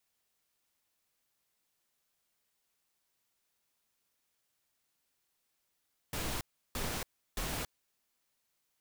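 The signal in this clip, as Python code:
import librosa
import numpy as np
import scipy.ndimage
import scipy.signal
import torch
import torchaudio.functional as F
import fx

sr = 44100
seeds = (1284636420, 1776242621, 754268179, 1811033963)

y = fx.noise_burst(sr, seeds[0], colour='pink', on_s=0.28, off_s=0.34, bursts=3, level_db=-36.5)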